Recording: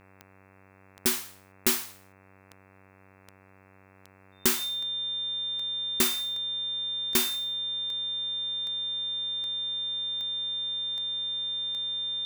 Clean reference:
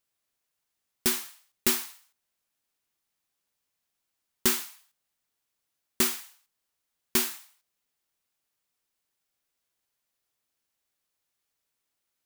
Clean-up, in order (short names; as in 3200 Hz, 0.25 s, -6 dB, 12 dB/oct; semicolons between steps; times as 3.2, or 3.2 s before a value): de-click; de-hum 95.9 Hz, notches 28; notch 3600 Hz, Q 30